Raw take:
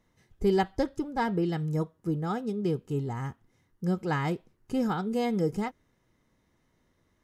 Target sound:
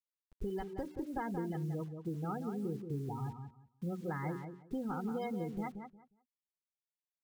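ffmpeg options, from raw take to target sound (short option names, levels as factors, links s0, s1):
-filter_complex "[0:a]bandreject=f=60:t=h:w=6,bandreject=f=120:t=h:w=6,bandreject=f=180:t=h:w=6,bandreject=f=240:t=h:w=6,bandreject=f=300:t=h:w=6,bandreject=f=360:t=h:w=6,bandreject=f=420:t=h:w=6,afftfilt=real='re*gte(hypot(re,im),0.0316)':imag='im*gte(hypot(re,im),0.0316)':win_size=1024:overlap=0.75,adynamicequalizer=threshold=0.00631:dfrequency=440:dqfactor=4.6:tfrequency=440:tqfactor=4.6:attack=5:release=100:ratio=0.375:range=2.5:mode=cutabove:tftype=bell,alimiter=limit=0.0794:level=0:latency=1:release=256,acompressor=threshold=0.02:ratio=4,acrusher=bits=9:mix=0:aa=0.000001,asplit=2[s0][s1];[s1]adelay=179,lowpass=f=2500:p=1,volume=0.422,asplit=2[s2][s3];[s3]adelay=179,lowpass=f=2500:p=1,volume=0.2,asplit=2[s4][s5];[s5]adelay=179,lowpass=f=2500:p=1,volume=0.2[s6];[s0][s2][s4][s6]amix=inputs=4:normalize=0,volume=0.794"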